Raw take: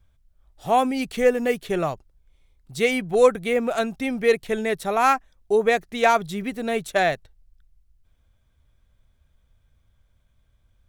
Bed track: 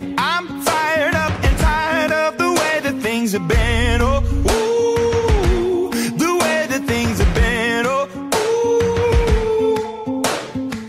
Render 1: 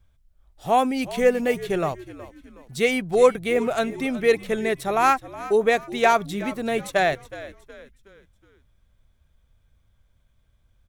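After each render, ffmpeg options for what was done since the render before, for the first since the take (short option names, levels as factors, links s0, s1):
-filter_complex "[0:a]asplit=5[s0][s1][s2][s3][s4];[s1]adelay=368,afreqshift=-67,volume=0.15[s5];[s2]adelay=736,afreqshift=-134,volume=0.0631[s6];[s3]adelay=1104,afreqshift=-201,volume=0.0263[s7];[s4]adelay=1472,afreqshift=-268,volume=0.0111[s8];[s0][s5][s6][s7][s8]amix=inputs=5:normalize=0"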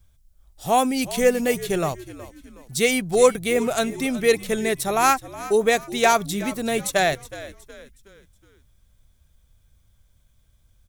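-af "bass=f=250:g=3,treble=f=4000:g=12"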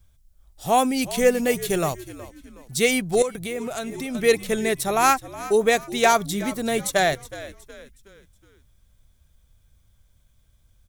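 -filter_complex "[0:a]asettb=1/sr,asplit=3[s0][s1][s2];[s0]atrim=end=1.624[s3];[s1]atrim=start=1.62:end=2.2,asetpts=PTS-STARTPTS,afade=t=in:d=0.004:c=qsin,afade=t=out:st=0.576:d=0.004:c=qsin,highshelf=f=6800:g=7[s4];[s2]atrim=start=2.196[s5];[s3][s4]acrossfade=d=0.004:c1=hsin:c2=qsin[s6];[s6][s5]acrossfade=d=0.004:c1=qsin:c2=hsin,asettb=1/sr,asplit=3[s7][s8][s9];[s7]atrim=end=3.224[s10];[s8]atrim=start=3.22:end=4.15,asetpts=PTS-STARTPTS,afade=t=in:d=0.004:c=qsin,afade=t=out:st=0.926:d=0.004:c=qsin,acompressor=threshold=0.0398:ratio=3:attack=3.2:release=140:knee=1:detection=peak[s11];[s9]atrim=start=4.146[s12];[s10][s11]acrossfade=d=0.004:c1=hsin:c2=qsin[s13];[s13][s12]acrossfade=d=0.004:c1=qsin:c2=hsin,asettb=1/sr,asplit=3[s14][s15][s16];[s14]atrim=end=6.064[s17];[s15]atrim=start=6.06:end=7.4,asetpts=PTS-STARTPTS,afade=t=in:d=0.004:c=qsin,afade=t=out:st=1.336:d=0.004:c=qsin,bandreject=f=2600:w=12[s18];[s16]atrim=start=7.396[s19];[s17][s18]acrossfade=d=0.004:c1=hsin:c2=qsin[s20];[s20][s19]acrossfade=d=0.004:c1=qsin:c2=hsin"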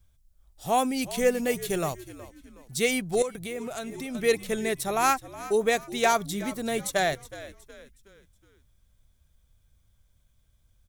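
-af "volume=0.562"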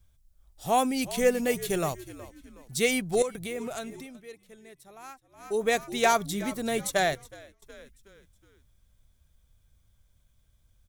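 -filter_complex "[0:a]asplit=4[s0][s1][s2][s3];[s0]atrim=end=4.22,asetpts=PTS-STARTPTS,afade=t=out:st=3.74:d=0.48:silence=0.0749894[s4];[s1]atrim=start=4.22:end=5.29,asetpts=PTS-STARTPTS,volume=0.075[s5];[s2]atrim=start=5.29:end=7.62,asetpts=PTS-STARTPTS,afade=t=in:d=0.48:silence=0.0749894,afade=t=out:st=1.76:d=0.57:silence=0.112202[s6];[s3]atrim=start=7.62,asetpts=PTS-STARTPTS,afade=t=in:d=0.004:c=hsin:silence=0.112202[s7];[s4][s5][s6][s7]concat=n=4:v=0:a=1"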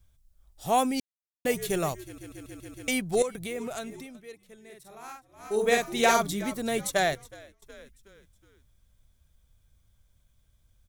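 -filter_complex "[0:a]asettb=1/sr,asplit=3[s0][s1][s2];[s0]atrim=end=4.654[s3];[s1]atrim=start=4.65:end=6.33,asetpts=PTS-STARTPTS,afade=t=in:d=0.004:c=qsin,afade=t=out:st=1.676:d=0.004:c=qsin,asplit=2[s4][s5];[s5]adelay=47,volume=0.75[s6];[s4][s6]amix=inputs=2:normalize=0,atrim=end_sample=74088[s7];[s2]atrim=start=6.326[s8];[s3][s7]acrossfade=d=0.004:c1=hsin:c2=qsin[s9];[s9][s8]acrossfade=d=0.004:c1=qsin:c2=hsin,asplit=9[s10][s11][s12][s13][s14][s15][s16][s17][s18];[s10]atrim=end=1,asetpts=PTS-STARTPTS,afade=t=out:st=0.996:d=0.004:c=hsin[s19];[s11]atrim=start=1:end=1.45,asetpts=PTS-STARTPTS,volume=0[s20];[s12]atrim=start=1.45:end=2.182,asetpts=PTS-STARTPTS,afade=t=in:d=0.004:c=hsin[s21];[s13]atrim=start=2.038:end=2.182[s22];[s14]atrim=start=2.038:end=2.182[s23];[s15]atrim=start=2.038:end=2.182[s24];[s16]atrim=start=2.038:end=2.182[s25];[s17]atrim=start=2.038:end=2.182[s26];[s18]atrim=start=2.878[s27];[s19][s20][s21]concat=n=3:v=0:a=1[s28];[s28][s22]acrossfade=d=0.004:c1=hsin:c2=hsin[s29];[s29][s23]acrossfade=d=0.004:c1=hsin:c2=hsin[s30];[s30][s24]acrossfade=d=0.004:c1=hsin:c2=hsin[s31];[s31][s25]acrossfade=d=0.004:c1=hsin:c2=hsin[s32];[s32][s26]acrossfade=d=0.004:c1=hsin:c2=hsin[s33];[s33][s27]acrossfade=d=0.004:c1=hsin:c2=hsin"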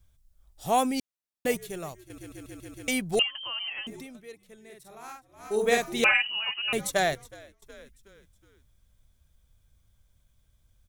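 -filter_complex "[0:a]asettb=1/sr,asplit=3[s0][s1][s2];[s0]atrim=end=3.194[s3];[s1]atrim=start=3.19:end=3.87,asetpts=PTS-STARTPTS,afade=t=in:d=0.004:c=qsin,afade=t=out:st=0.676:d=0.004:c=qsin,lowpass=f=2800:t=q:w=0.5098,lowpass=f=2800:t=q:w=0.6013,lowpass=f=2800:t=q:w=0.9,lowpass=f=2800:t=q:w=2.563,afreqshift=-3300[s4];[s2]atrim=start=3.866[s5];[s3][s4]acrossfade=d=0.004:c1=hsin:c2=qsin[s6];[s6][s5]acrossfade=d=0.004:c1=qsin:c2=hsin,asettb=1/sr,asplit=3[s7][s8][s9];[s7]atrim=end=6.044[s10];[s8]atrim=start=6.04:end=6.73,asetpts=PTS-STARTPTS,afade=t=in:d=0.004:c=qsin,afade=t=out:st=0.686:d=0.004:c=qsin,lowpass=f=2600:t=q:w=0.5098,lowpass=f=2600:t=q:w=0.6013,lowpass=f=2600:t=q:w=0.9,lowpass=f=2600:t=q:w=2.563,afreqshift=-3100[s11];[s9]atrim=start=6.726[s12];[s10][s11]acrossfade=d=0.004:c1=hsin:c2=qsin[s13];[s13][s12]acrossfade=d=0.004:c1=qsin:c2=hsin,asplit=3[s14][s15][s16];[s14]atrim=end=1.572[s17];[s15]atrim=start=1.568:end=2.102,asetpts=PTS-STARTPTS,volume=0.355[s18];[s16]atrim=start=2.098[s19];[s17][s18]acrossfade=d=0.004:c1=hsin:c2=hsin[s20];[s20][s19]acrossfade=d=0.004:c1=hsin:c2=hsin"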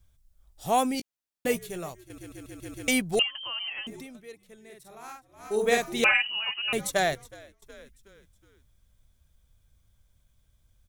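-filter_complex "[0:a]asettb=1/sr,asplit=3[s0][s1][s2];[s0]atrim=end=0.934[s3];[s1]atrim=start=0.93:end=1.92,asetpts=PTS-STARTPTS,afade=t=in:d=0.004:c=qsin,afade=t=out:st=0.986:d=0.004:c=qsin,asplit=2[s4][s5];[s5]adelay=17,volume=0.316[s6];[s4][s6]amix=inputs=2:normalize=0,atrim=end_sample=43659[s7];[s2]atrim=start=1.916[s8];[s3][s7]acrossfade=d=0.004:c1=hsin:c2=qsin[s9];[s9][s8]acrossfade=d=0.004:c1=qsin:c2=hsin,asplit=3[s10][s11][s12];[s10]atrim=end=2.622[s13];[s11]atrim=start=2.618:end=3.022,asetpts=PTS-STARTPTS,volume=1.5[s14];[s12]atrim=start=3.018[s15];[s13][s14]acrossfade=d=0.004:c1=hsin:c2=hsin[s16];[s16][s15]acrossfade=d=0.004:c1=hsin:c2=hsin"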